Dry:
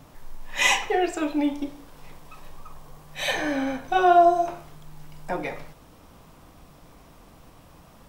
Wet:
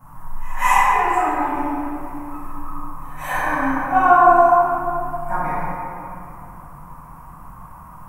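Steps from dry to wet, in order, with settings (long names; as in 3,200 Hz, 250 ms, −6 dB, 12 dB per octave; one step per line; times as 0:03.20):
drawn EQ curve 180 Hz 0 dB, 370 Hz −15 dB, 680 Hz −6 dB, 980 Hz +11 dB, 3,800 Hz −22 dB, 11,000 Hz +2 dB
echo ahead of the sound 192 ms −23 dB
convolution reverb RT60 2.7 s, pre-delay 4 ms, DRR −14.5 dB
level −5.5 dB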